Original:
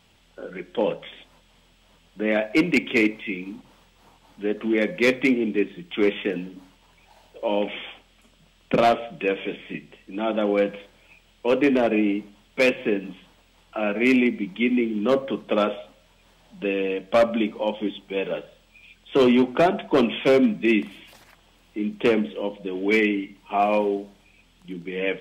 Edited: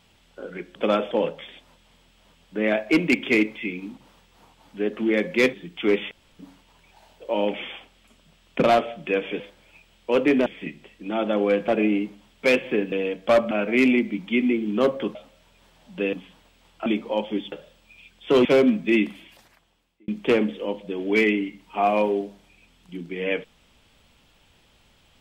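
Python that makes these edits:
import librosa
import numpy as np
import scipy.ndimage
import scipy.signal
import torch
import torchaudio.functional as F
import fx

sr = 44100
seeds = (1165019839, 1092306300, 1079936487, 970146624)

y = fx.edit(x, sr, fx.cut(start_s=5.17, length_s=0.5),
    fx.room_tone_fill(start_s=6.25, length_s=0.28),
    fx.move(start_s=10.76, length_s=1.06, to_s=9.54),
    fx.swap(start_s=13.06, length_s=0.73, other_s=16.77, other_length_s=0.59),
    fx.move(start_s=15.43, length_s=0.36, to_s=0.75),
    fx.cut(start_s=18.02, length_s=0.35),
    fx.cut(start_s=19.3, length_s=0.91),
    fx.fade_out_span(start_s=20.74, length_s=1.1), tone=tone)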